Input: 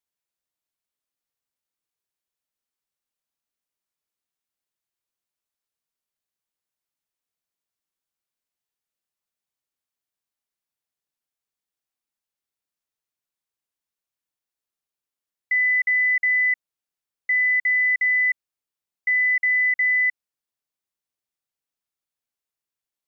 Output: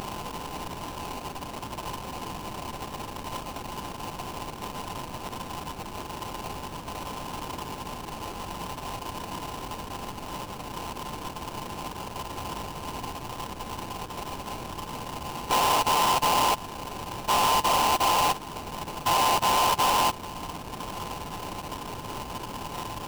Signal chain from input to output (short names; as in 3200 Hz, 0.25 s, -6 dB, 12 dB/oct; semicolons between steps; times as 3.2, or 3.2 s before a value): per-bin compression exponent 0.2; notch 1800 Hz, Q 21; in parallel at -2 dB: compressor 5:1, threshold -35 dBFS, peak gain reduction 15 dB; on the sum: formant-preserving pitch shift -11.5 st; sample-rate reducer 1900 Hz, jitter 20%; soft clip -19.5 dBFS, distortion -14 dB